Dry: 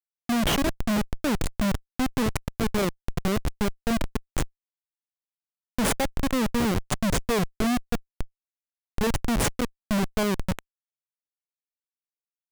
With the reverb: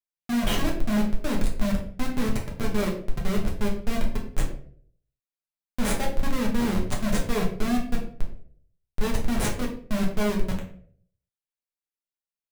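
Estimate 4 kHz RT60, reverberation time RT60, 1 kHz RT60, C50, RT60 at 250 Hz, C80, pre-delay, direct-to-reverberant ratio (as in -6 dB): 0.35 s, 0.55 s, 0.50 s, 7.0 dB, 0.65 s, 10.5 dB, 5 ms, -2.5 dB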